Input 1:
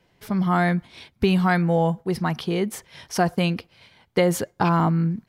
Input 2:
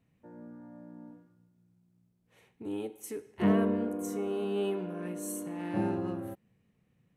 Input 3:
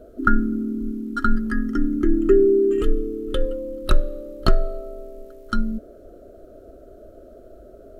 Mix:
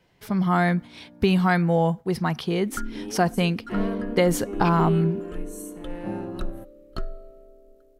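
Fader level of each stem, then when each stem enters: -0.5 dB, -1.0 dB, -14.5 dB; 0.00 s, 0.30 s, 2.50 s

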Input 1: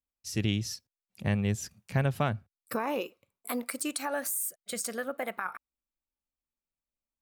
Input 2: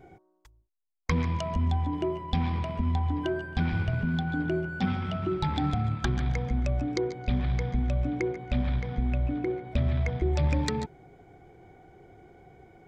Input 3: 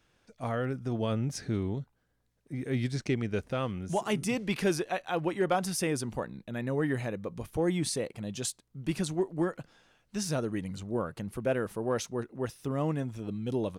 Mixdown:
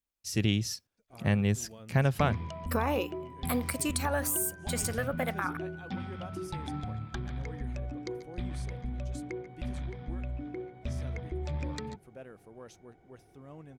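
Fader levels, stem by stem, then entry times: +1.5 dB, -9.5 dB, -18.5 dB; 0.00 s, 1.10 s, 0.70 s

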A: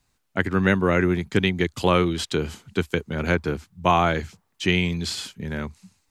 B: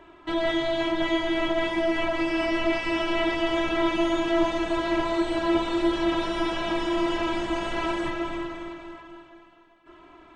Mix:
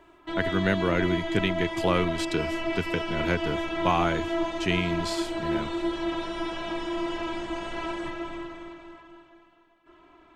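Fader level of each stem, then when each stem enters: -5.5 dB, -5.0 dB; 0.00 s, 0.00 s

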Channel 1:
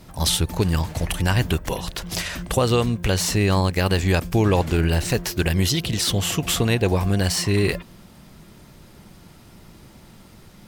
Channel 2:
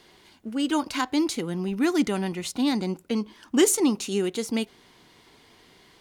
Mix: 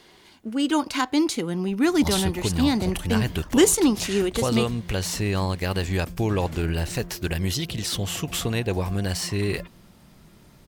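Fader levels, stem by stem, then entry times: -5.5 dB, +2.5 dB; 1.85 s, 0.00 s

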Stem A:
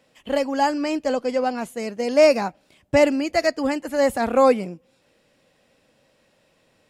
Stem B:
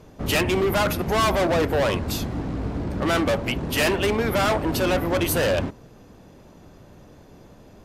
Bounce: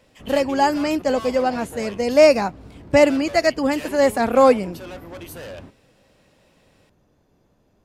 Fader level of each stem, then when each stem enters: +2.5 dB, -14.5 dB; 0.00 s, 0.00 s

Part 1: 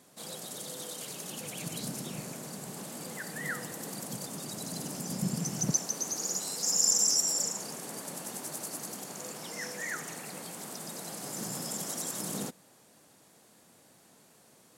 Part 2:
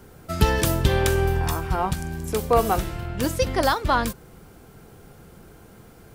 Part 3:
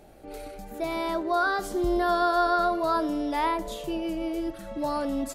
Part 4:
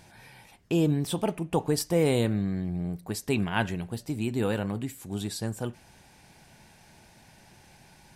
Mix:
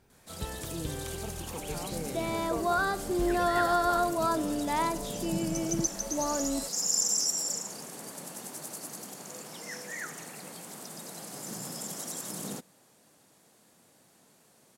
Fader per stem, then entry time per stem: -2.0 dB, -19.0 dB, -3.0 dB, -16.0 dB; 0.10 s, 0.00 s, 1.35 s, 0.00 s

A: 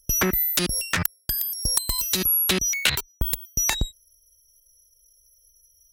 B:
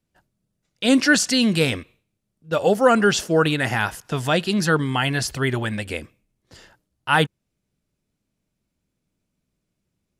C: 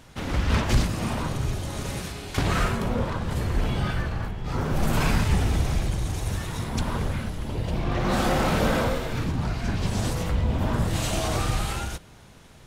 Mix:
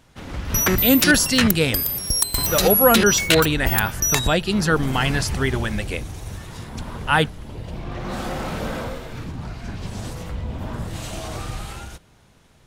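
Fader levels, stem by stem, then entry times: +2.5 dB, 0.0 dB, -5.0 dB; 0.45 s, 0.00 s, 0.00 s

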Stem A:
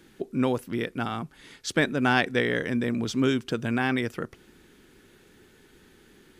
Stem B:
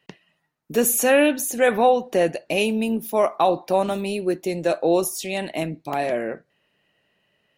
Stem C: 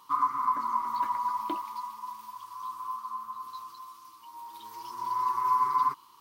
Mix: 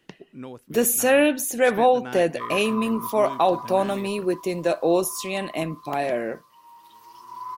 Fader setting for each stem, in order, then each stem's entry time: -13.5 dB, -1.0 dB, -5.0 dB; 0.00 s, 0.00 s, 2.30 s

